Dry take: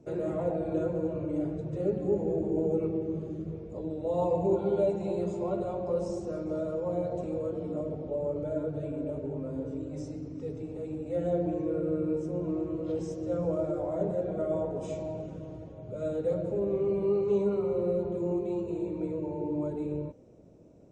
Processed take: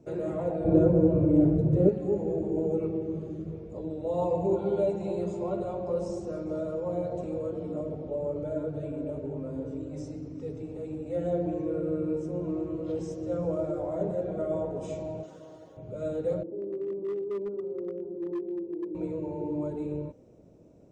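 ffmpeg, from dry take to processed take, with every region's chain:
ffmpeg -i in.wav -filter_complex "[0:a]asettb=1/sr,asplit=3[link_01][link_02][link_03];[link_01]atrim=end=0.644[link_04];[link_02]atrim=start=0.64:end=1.89,asetpts=PTS-STARTPTS,afade=type=in:duration=0.004:curve=qsin,afade=type=out:start_time=1.246:duration=0.004:curve=qsin,tiltshelf=frequency=710:gain=8,acontrast=24[link_05];[link_03]atrim=start=1.886[link_06];[link_04][link_05]acrossfade=duration=0.004:curve1=hsin:curve2=qsin[link_07];[link_07][link_06]acrossfade=duration=0.004:curve1=qsin:curve2=hsin,asettb=1/sr,asplit=3[link_08][link_09][link_10];[link_08]atrim=end=15.234[link_11];[link_09]atrim=start=15.23:end=15.77,asetpts=PTS-STARTPTS,afade=type=in:duration=0.004:curve=qsin,afade=type=out:start_time=0.536:duration=0.004:curve=qsin,highpass=frequency=1500:poles=1,equalizer=frequency=2400:width=3.6:gain=-11,acontrast=79[link_12];[link_10]atrim=start=15.766[link_13];[link_11][link_12]acrossfade=duration=0.004:curve1=hsin:curve2=qsin[link_14];[link_14][link_13]acrossfade=duration=0.004:curve1=qsin:curve2=hsin,asettb=1/sr,asplit=3[link_15][link_16][link_17];[link_15]atrim=end=16.434[link_18];[link_16]atrim=start=16.43:end=18.95,asetpts=PTS-STARTPTS,afade=type=in:duration=0.004:curve=qsin,afade=type=out:start_time=2.516:duration=0.004:curve=qsin,bandpass=frequency=330:width_type=q:width=3.7,asoftclip=type=hard:threshold=-28dB[link_19];[link_17]atrim=start=18.946[link_20];[link_18][link_19]acrossfade=duration=0.004:curve1=hsin:curve2=qsin[link_21];[link_21][link_20]acrossfade=duration=0.004:curve1=qsin:curve2=hsin" out.wav

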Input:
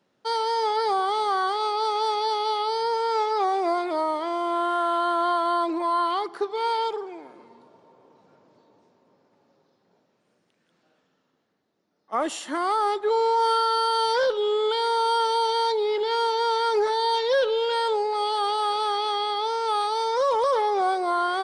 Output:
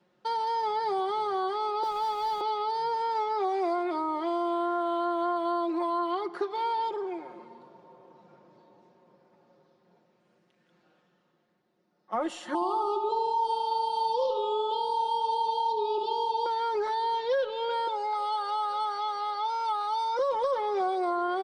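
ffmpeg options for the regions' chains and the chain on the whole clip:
ffmpeg -i in.wav -filter_complex "[0:a]asettb=1/sr,asplit=3[link_01][link_02][link_03];[link_01]atrim=end=1.834[link_04];[link_02]atrim=start=1.83:end=2.41,asetpts=PTS-STARTPTS,afade=type=in:duration=0.004:curve=qsin,afade=type=out:start_time=0.576:duration=0.004:curve=qsin,highpass=frequency=470:width=0.5412,highpass=frequency=470:width=1.3066,acrusher=bits=5:mix=0:aa=0.5[link_05];[link_03]atrim=start=2.406[link_06];[link_04][link_05]acrossfade=duration=0.004:curve1=hsin:curve2=qsin[link_07];[link_07][link_06]acrossfade=duration=0.004:curve1=qsin:curve2=hsin,asettb=1/sr,asplit=3[link_08][link_09][link_10];[link_08]atrim=end=12.544[link_11];[link_09]atrim=start=12.54:end=16.46,asetpts=PTS-STARTPTS,afade=type=in:duration=0.004:curve=qsin,afade=type=out:start_time=3.916:duration=0.004:curve=qsin,asuperstop=centerf=1800:order=20:qfactor=1.4,aeval=exprs='val(0)+0.0447*sin(2*PI*880*n/s)':channel_layout=same,asplit=2[link_12][link_13];[link_13]adelay=73,lowpass=frequency=4000:poles=1,volume=-7.5dB,asplit=2[link_14][link_15];[link_15]adelay=73,lowpass=frequency=4000:poles=1,volume=0.52,asplit=2[link_16][link_17];[link_17]adelay=73,lowpass=frequency=4000:poles=1,volume=0.52,asplit=2[link_18][link_19];[link_19]adelay=73,lowpass=frequency=4000:poles=1,volume=0.52,asplit=2[link_20][link_21];[link_21]adelay=73,lowpass=frequency=4000:poles=1,volume=0.52,asplit=2[link_22][link_23];[link_23]adelay=73,lowpass=frequency=4000:poles=1,volume=0.52[link_24];[link_12][link_14][link_16][link_18][link_20][link_22][link_24]amix=inputs=7:normalize=0,atrim=end_sample=172872[link_25];[link_10]atrim=start=16.456[link_26];[link_11][link_25]acrossfade=duration=0.004:curve1=hsin:curve2=qsin[link_27];[link_27][link_26]acrossfade=duration=0.004:curve1=qsin:curve2=hsin,asettb=1/sr,asplit=3[link_28][link_29][link_30];[link_28]atrim=end=17.874[link_31];[link_29]atrim=start=17.87:end=20.19,asetpts=PTS-STARTPTS,afade=type=in:duration=0.004:curve=qsin,afade=type=out:start_time=2.316:duration=0.004:curve=qsin,highpass=frequency=540:poles=1,aecho=1:1:1.4:0.84,atrim=end_sample=102312[link_32];[link_30]atrim=start=20.186[link_33];[link_31][link_32]acrossfade=duration=0.004:curve1=hsin:curve2=qsin[link_34];[link_34][link_33]acrossfade=duration=0.004:curve1=qsin:curve2=hsin,lowpass=frequency=3200:poles=1,aecho=1:1:5.6:0.68,acrossover=split=600|1300[link_35][link_36][link_37];[link_35]acompressor=threshold=-30dB:ratio=4[link_38];[link_36]acompressor=threshold=-35dB:ratio=4[link_39];[link_37]acompressor=threshold=-42dB:ratio=4[link_40];[link_38][link_39][link_40]amix=inputs=3:normalize=0" out.wav

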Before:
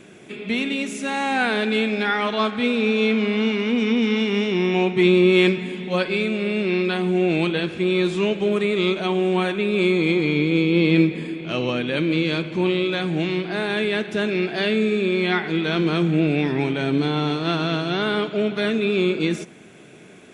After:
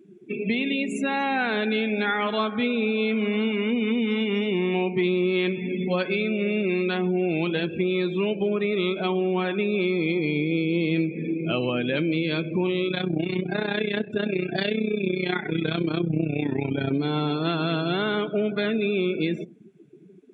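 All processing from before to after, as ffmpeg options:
ffmpeg -i in.wav -filter_complex "[0:a]asettb=1/sr,asplit=3[link_01][link_02][link_03];[link_01]atrim=end=12.884[link_04];[link_02]atrim=start=12.88:end=16.91,asetpts=PTS-STARTPTS,afade=type=in:duration=0.004:curve=qsin,afade=type=out:start_time=4.026:duration=0.004:curve=qsin,bass=frequency=250:gain=4,treble=frequency=4000:gain=5,aphaser=in_gain=1:out_gain=1:delay=3.7:decay=0.27:speed=1.8:type=triangular,tremolo=f=31:d=0.788[link_05];[link_03]atrim=start=16.906[link_06];[link_04][link_05]acrossfade=duration=0.004:curve1=hsin:curve2=qsin[link_07];[link_07][link_06]acrossfade=duration=0.004:curve1=qsin:curve2=hsin,afftdn=noise_reduction=32:noise_floor=-32,acompressor=threshold=-29dB:ratio=4,highpass=48,volume=6dB" out.wav

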